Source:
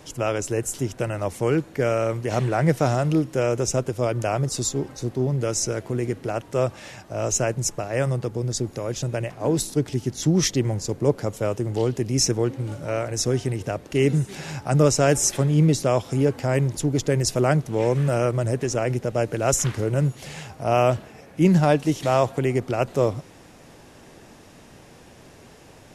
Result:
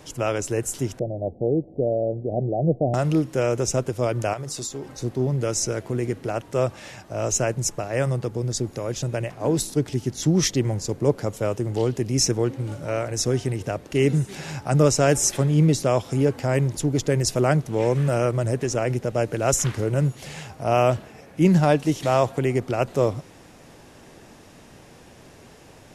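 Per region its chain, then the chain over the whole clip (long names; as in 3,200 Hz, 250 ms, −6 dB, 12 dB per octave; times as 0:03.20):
0:00.99–0:02.94: Butterworth low-pass 740 Hz 72 dB per octave + dynamic equaliser 110 Hz, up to −3 dB, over −31 dBFS, Q 0.98
0:04.33–0:04.87: low-shelf EQ 330 Hz −8 dB + mains-hum notches 50/100/150/200/250/300/350 Hz + downward compressor, threshold −27 dBFS
whole clip: no processing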